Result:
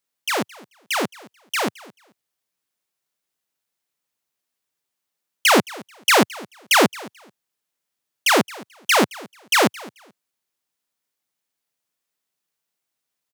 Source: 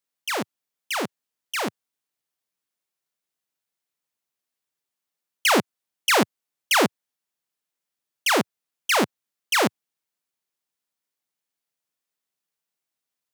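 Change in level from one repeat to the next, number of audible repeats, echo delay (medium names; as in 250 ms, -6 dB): -14.0 dB, 2, 218 ms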